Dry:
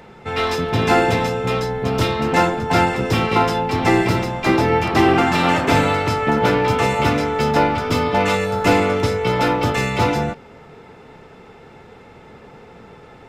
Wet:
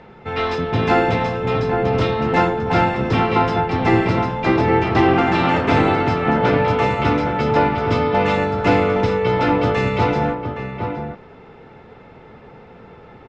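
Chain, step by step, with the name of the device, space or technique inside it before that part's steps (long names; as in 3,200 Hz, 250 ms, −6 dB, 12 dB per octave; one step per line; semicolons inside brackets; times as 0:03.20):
shout across a valley (high-frequency loss of the air 170 metres; slap from a distant wall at 140 metres, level −6 dB)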